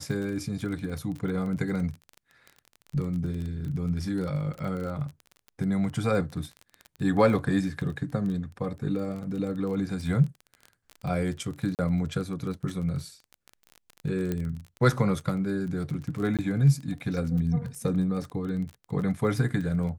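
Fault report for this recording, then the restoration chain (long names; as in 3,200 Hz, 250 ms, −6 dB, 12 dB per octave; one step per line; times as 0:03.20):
surface crackle 24 per second −33 dBFS
0:11.75–0:11.79: drop-out 38 ms
0:14.32: click −17 dBFS
0:16.37–0:16.39: drop-out 17 ms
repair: click removal
repair the gap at 0:11.75, 38 ms
repair the gap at 0:16.37, 17 ms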